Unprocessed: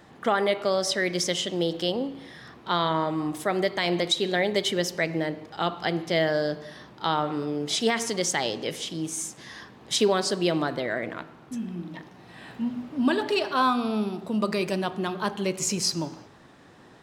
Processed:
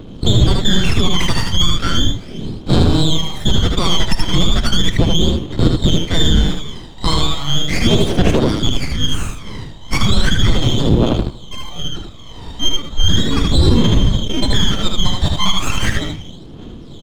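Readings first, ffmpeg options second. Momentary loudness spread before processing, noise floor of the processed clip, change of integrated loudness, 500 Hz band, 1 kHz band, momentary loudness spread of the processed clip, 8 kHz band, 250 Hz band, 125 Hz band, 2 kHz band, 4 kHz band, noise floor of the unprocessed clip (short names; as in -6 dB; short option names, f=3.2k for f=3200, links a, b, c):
12 LU, -34 dBFS, +10.0 dB, +3.0 dB, +2.5 dB, 14 LU, +5.5 dB, +10.0 dB, +20.5 dB, +5.0 dB, +13.0 dB, -51 dBFS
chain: -filter_complex "[0:a]afftfilt=real='real(if(lt(b,272),68*(eq(floor(b/68),0)*1+eq(floor(b/68),1)*3+eq(floor(b/68),2)*0+eq(floor(b/68),3)*2)+mod(b,68),b),0)':imag='imag(if(lt(b,272),68*(eq(floor(b/68),0)*1+eq(floor(b/68),1)*3+eq(floor(b/68),2)*0+eq(floor(b/68),3)*2)+mod(b,68),b),0)':win_size=2048:overlap=0.75,asplit=2[a][b];[b]acrusher=samples=41:mix=1:aa=0.000001:lfo=1:lforange=41:lforate=0.24,volume=-10dB[c];[a][c]amix=inputs=2:normalize=0,aphaser=in_gain=1:out_gain=1:delay=1.1:decay=0.76:speed=0.36:type=triangular,acrossover=split=340[d][e];[d]acrusher=bits=6:mode=log:mix=0:aa=0.000001[f];[e]aeval=exprs='max(val(0),0)':c=same[g];[f][g]amix=inputs=2:normalize=0,lowpass=f=1.3k:p=1,aecho=1:1:77:0.631,alimiter=level_in=15dB:limit=-1dB:release=50:level=0:latency=1,volume=-1dB"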